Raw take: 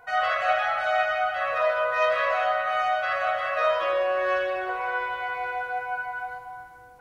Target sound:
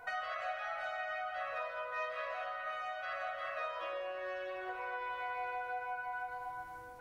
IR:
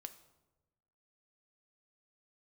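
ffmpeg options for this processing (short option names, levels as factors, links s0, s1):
-filter_complex "[0:a]acompressor=threshold=0.0126:ratio=5[s0];[1:a]atrim=start_sample=2205,asetrate=52920,aresample=44100[s1];[s0][s1]afir=irnorm=-1:irlink=0,volume=2.11"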